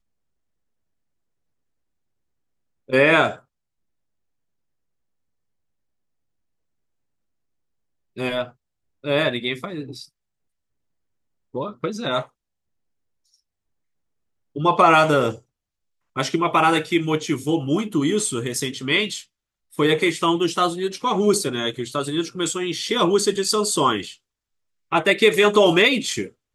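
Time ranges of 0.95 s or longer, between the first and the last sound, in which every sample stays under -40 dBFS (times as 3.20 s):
3.38–8.17 s
10.05–11.54 s
12.26–14.56 s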